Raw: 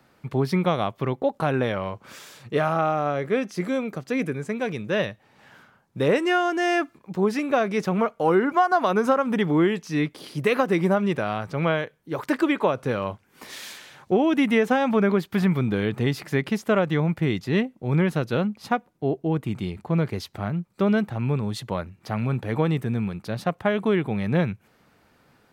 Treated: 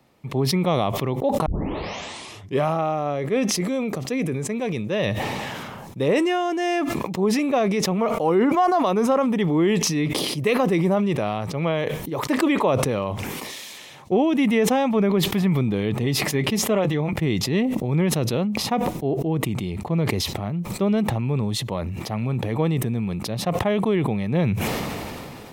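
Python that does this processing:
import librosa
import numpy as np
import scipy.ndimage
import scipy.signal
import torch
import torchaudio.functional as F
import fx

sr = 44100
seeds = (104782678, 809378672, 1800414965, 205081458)

y = fx.notch_comb(x, sr, f0_hz=170.0, at=(16.02, 17.13))
y = fx.edit(y, sr, fx.tape_start(start_s=1.46, length_s=1.21), tone=tone)
y = fx.peak_eq(y, sr, hz=1500.0, db=-12.5, octaves=0.36)
y = fx.notch(y, sr, hz=4600.0, q=17.0)
y = fx.sustainer(y, sr, db_per_s=21.0)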